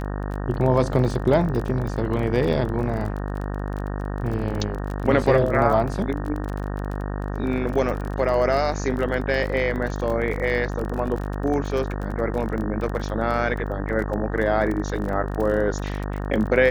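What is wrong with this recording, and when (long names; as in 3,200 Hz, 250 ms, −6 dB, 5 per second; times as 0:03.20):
mains buzz 50 Hz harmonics 37 −28 dBFS
surface crackle 28 per second −28 dBFS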